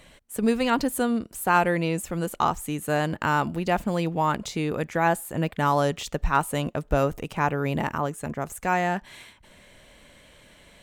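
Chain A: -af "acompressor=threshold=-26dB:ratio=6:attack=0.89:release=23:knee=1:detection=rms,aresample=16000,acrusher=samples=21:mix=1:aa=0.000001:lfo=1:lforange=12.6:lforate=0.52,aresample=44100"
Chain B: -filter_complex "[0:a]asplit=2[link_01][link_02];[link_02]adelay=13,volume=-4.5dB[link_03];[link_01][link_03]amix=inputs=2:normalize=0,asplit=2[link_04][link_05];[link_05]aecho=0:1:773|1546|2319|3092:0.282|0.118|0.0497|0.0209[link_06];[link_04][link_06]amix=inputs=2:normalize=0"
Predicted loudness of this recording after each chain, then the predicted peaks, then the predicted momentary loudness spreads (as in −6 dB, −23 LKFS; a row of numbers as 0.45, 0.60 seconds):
−33.5, −24.0 LKFS; −20.0, −5.5 dBFS; 5, 14 LU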